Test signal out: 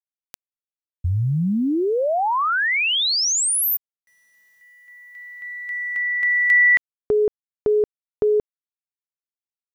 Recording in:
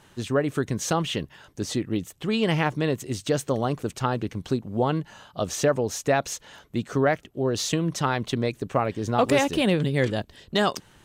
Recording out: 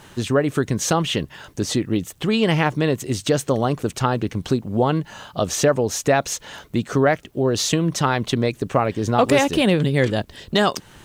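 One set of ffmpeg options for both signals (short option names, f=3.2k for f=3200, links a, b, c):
-filter_complex "[0:a]asplit=2[a][b];[b]acompressor=threshold=-33dB:ratio=12,volume=1dB[c];[a][c]amix=inputs=2:normalize=0,acrusher=bits=10:mix=0:aa=0.000001,volume=3dB"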